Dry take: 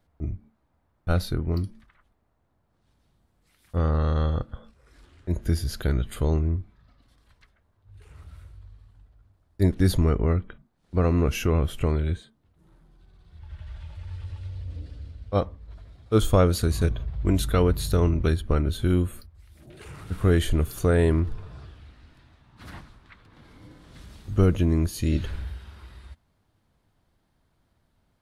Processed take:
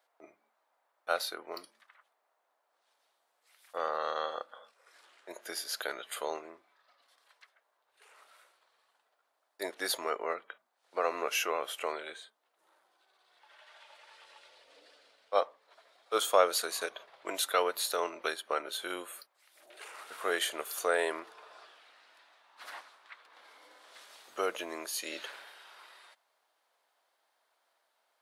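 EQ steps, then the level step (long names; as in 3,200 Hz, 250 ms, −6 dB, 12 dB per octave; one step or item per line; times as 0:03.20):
high-pass filter 570 Hz 24 dB per octave
+1.0 dB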